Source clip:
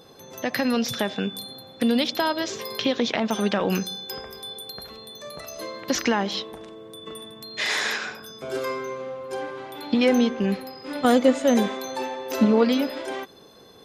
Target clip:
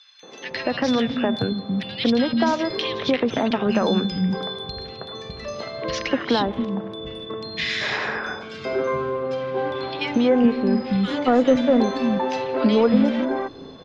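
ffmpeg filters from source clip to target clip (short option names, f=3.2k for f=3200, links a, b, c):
-filter_complex "[0:a]lowpass=f=5.4k:w=0.5412,lowpass=f=5.4k:w=1.3066,asplit=2[a][b];[b]acompressor=threshold=-29dB:ratio=6,volume=3dB[c];[a][c]amix=inputs=2:normalize=0,acrossover=split=220|1800[d][e][f];[e]adelay=230[g];[d]adelay=510[h];[h][g][f]amix=inputs=3:normalize=0,acontrast=29,bass=f=250:g=6,treble=f=4k:g=-7,volume=-5dB"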